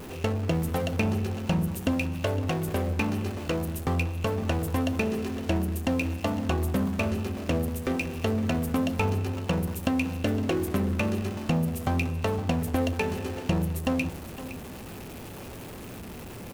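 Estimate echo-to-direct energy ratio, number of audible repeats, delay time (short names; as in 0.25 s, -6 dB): -13.5 dB, 1, 0.513 s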